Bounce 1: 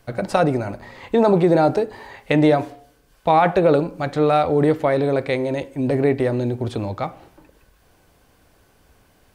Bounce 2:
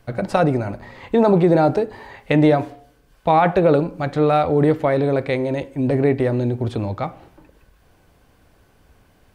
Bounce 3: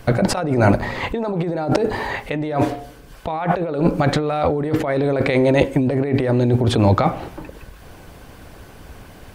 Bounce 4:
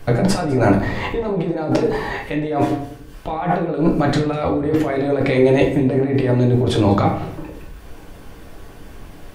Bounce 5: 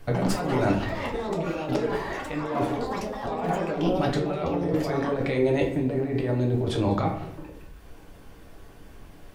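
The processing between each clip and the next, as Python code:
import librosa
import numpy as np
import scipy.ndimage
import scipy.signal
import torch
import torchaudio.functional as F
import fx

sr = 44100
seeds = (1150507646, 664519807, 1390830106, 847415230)

y1 = fx.bass_treble(x, sr, bass_db=3, treble_db=-4)
y2 = fx.hpss(y1, sr, part='percussive', gain_db=4)
y2 = fx.over_compress(y2, sr, threshold_db=-24.0, ratio=-1.0)
y2 = F.gain(torch.from_numpy(y2), 5.5).numpy()
y3 = y2 + 10.0 ** (-21.5 / 20.0) * np.pad(y2, (int(200 * sr / 1000.0), 0))[:len(y2)]
y3 = fx.room_shoebox(y3, sr, seeds[0], volume_m3=44.0, walls='mixed', distance_m=0.6)
y3 = F.gain(torch.from_numpy(y3), -3.0).numpy()
y4 = fx.echo_pitch(y3, sr, ms=90, semitones=6, count=3, db_per_echo=-6.0)
y4 = F.gain(torch.from_numpy(y4), -9.0).numpy()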